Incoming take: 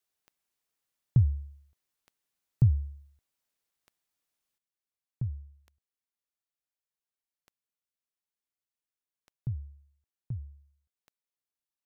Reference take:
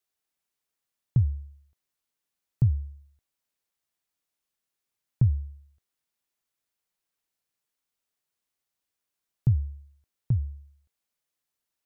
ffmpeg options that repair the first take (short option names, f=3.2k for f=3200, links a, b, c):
-af "adeclick=t=4,asetnsamples=n=441:p=0,asendcmd='4.58 volume volume 11.5dB',volume=0dB"